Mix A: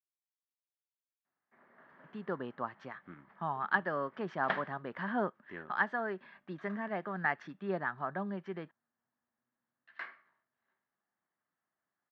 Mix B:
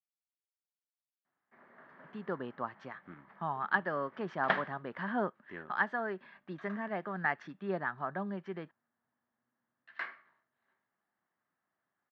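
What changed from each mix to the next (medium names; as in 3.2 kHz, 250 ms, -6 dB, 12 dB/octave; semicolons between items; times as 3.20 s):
background +4.0 dB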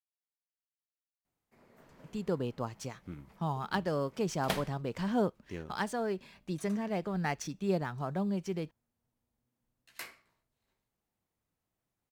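background -3.5 dB; master: remove cabinet simulation 270–2800 Hz, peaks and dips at 310 Hz -4 dB, 470 Hz -8 dB, 1.2 kHz +5 dB, 1.7 kHz +10 dB, 2.5 kHz -8 dB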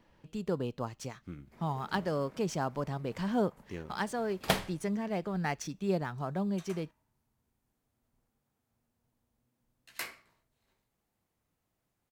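speech: entry -1.80 s; background +5.0 dB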